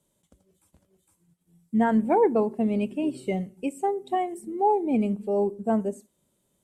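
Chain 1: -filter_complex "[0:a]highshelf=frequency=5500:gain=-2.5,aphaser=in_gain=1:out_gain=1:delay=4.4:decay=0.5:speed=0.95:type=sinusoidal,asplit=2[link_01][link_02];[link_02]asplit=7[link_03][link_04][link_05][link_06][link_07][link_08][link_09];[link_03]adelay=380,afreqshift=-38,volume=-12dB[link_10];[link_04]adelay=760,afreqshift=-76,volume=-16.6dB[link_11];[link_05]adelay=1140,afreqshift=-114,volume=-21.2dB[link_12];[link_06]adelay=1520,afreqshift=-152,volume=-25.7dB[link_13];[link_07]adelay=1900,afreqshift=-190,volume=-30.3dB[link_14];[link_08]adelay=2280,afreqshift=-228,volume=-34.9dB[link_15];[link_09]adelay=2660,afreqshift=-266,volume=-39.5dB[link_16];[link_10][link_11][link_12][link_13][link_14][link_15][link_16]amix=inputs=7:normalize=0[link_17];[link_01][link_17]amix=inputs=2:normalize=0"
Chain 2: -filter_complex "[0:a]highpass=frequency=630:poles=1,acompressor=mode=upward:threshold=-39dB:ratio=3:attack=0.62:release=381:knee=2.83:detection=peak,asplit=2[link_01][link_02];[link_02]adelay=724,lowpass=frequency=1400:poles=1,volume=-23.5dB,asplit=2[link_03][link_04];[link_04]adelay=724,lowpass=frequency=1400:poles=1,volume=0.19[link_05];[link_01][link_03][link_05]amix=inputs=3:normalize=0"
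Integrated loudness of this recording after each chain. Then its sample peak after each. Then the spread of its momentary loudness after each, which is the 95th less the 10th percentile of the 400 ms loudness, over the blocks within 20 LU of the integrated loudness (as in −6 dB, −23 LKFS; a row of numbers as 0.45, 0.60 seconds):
−24.0, −31.0 LKFS; −6.0, −15.0 dBFS; 13, 11 LU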